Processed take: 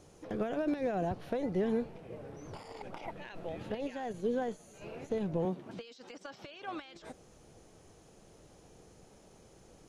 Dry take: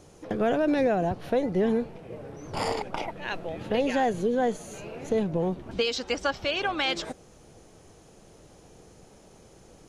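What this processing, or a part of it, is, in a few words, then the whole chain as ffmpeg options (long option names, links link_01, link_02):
de-esser from a sidechain: -filter_complex "[0:a]asettb=1/sr,asplit=3[link_01][link_02][link_03];[link_01]atrim=end=5.454[link_04];[link_02]atrim=start=5.45:end=6.8,asetpts=PTS-STARTPTS,afade=type=in:duration=0.004:curve=qsin,afade=type=out:start_time=1.346:duration=0.004:curve=qsin,highpass=frequency=130:width=0.5412,highpass=frequency=130:width=1.3066[link_05];[link_03]atrim=start=6.796[link_06];[link_04][link_05]acrossfade=duration=0.004:curve1=hsin:curve2=qsin[link_07];[link_07][link_06]acrossfade=duration=0.004:curve1=qsin:curve2=hsin,asplit=2[link_08][link_09];[link_09]highpass=5100,apad=whole_len=435755[link_10];[link_08][link_10]sidechaincompress=threshold=-53dB:ratio=16:attack=1.4:release=40,volume=-5.5dB"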